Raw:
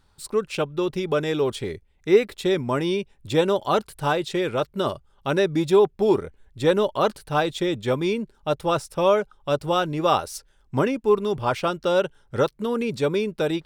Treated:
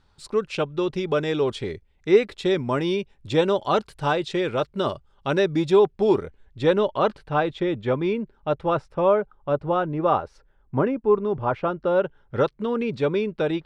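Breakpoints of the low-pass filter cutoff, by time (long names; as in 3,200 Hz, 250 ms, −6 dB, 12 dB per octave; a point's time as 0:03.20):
0:06.20 5,800 Hz
0:07.40 2,400 Hz
0:08.54 2,400 Hz
0:09.20 1,500 Hz
0:11.89 1,500 Hz
0:12.45 3,200 Hz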